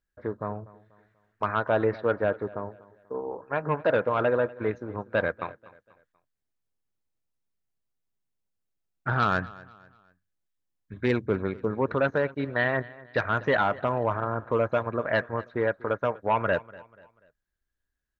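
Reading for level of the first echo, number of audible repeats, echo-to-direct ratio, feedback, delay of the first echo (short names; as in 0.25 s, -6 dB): -20.5 dB, 2, -20.0 dB, 39%, 0.243 s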